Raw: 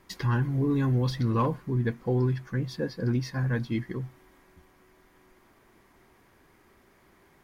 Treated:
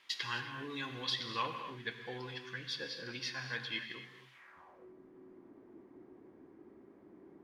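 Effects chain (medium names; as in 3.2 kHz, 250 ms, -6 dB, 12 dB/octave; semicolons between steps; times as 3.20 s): gated-style reverb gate 300 ms flat, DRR 6 dB; band-pass sweep 3.2 kHz -> 310 Hz, 4.30–4.93 s; trim +9 dB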